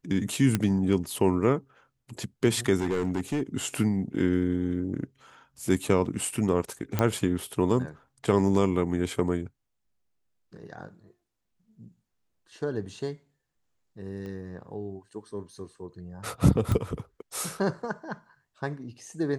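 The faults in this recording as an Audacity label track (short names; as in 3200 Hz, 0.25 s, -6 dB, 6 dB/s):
0.550000	0.550000	pop -10 dBFS
2.780000	3.420000	clipped -22.5 dBFS
6.990000	6.990000	pop -11 dBFS
14.260000	14.260000	pop -29 dBFS
16.720000	16.720000	pop -15 dBFS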